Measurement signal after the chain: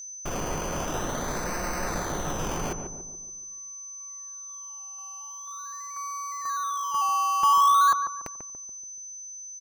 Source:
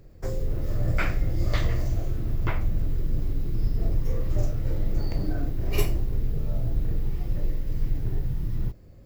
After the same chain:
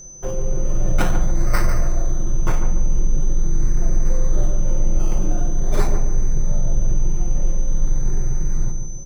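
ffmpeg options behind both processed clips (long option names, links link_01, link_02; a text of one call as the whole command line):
ffmpeg -i in.wav -filter_complex "[0:a]equalizer=frequency=2300:width_type=o:width=2.5:gain=8.5,aecho=1:1:5.6:0.81,acrossover=split=1500[link_01][link_02];[link_02]acrusher=samples=18:mix=1:aa=0.000001:lfo=1:lforange=10.8:lforate=0.45[link_03];[link_01][link_03]amix=inputs=2:normalize=0,aeval=exprs='val(0)+0.0126*sin(2*PI*6100*n/s)':channel_layout=same,aeval=exprs='0.501*(cos(1*acos(clip(val(0)/0.501,-1,1)))-cos(1*PI/2))+0.00794*(cos(5*acos(clip(val(0)/0.501,-1,1)))-cos(5*PI/2))':channel_layout=same,asplit=2[link_04][link_05];[link_05]adelay=143,lowpass=frequency=910:poles=1,volume=-5dB,asplit=2[link_06][link_07];[link_07]adelay=143,lowpass=frequency=910:poles=1,volume=0.52,asplit=2[link_08][link_09];[link_09]adelay=143,lowpass=frequency=910:poles=1,volume=0.52,asplit=2[link_10][link_11];[link_11]adelay=143,lowpass=frequency=910:poles=1,volume=0.52,asplit=2[link_12][link_13];[link_13]adelay=143,lowpass=frequency=910:poles=1,volume=0.52,asplit=2[link_14][link_15];[link_15]adelay=143,lowpass=frequency=910:poles=1,volume=0.52,asplit=2[link_16][link_17];[link_17]adelay=143,lowpass=frequency=910:poles=1,volume=0.52[link_18];[link_04][link_06][link_08][link_10][link_12][link_14][link_16][link_18]amix=inputs=8:normalize=0" out.wav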